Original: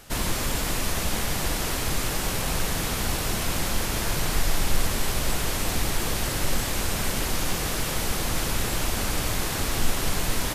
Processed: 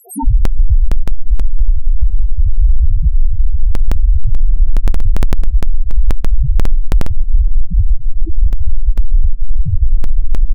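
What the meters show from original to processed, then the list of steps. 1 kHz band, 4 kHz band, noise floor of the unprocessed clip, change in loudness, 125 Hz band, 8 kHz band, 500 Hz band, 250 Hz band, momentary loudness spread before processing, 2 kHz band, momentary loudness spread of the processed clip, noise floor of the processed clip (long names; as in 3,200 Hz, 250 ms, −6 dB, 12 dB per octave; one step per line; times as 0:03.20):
−4.5 dB, −15.0 dB, −28 dBFS, +8.0 dB, +13.0 dB, −14.5 dB, −5.0 dB, +0.5 dB, 1 LU, −11.5 dB, 4 LU, −18 dBFS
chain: in parallel at −7.5 dB: soft clipping −21 dBFS, distortion −13 dB
on the sum: dynamic equaliser 690 Hz, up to −4 dB, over −51 dBFS, Q 4.5
reversed playback
upward compression, threshold −23 dBFS
reversed playback
three-band delay without the direct sound highs, mids, lows 60/140 ms, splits 170/5,900 Hz
spectral peaks only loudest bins 1
boost into a limiter +29 dB
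level −1.5 dB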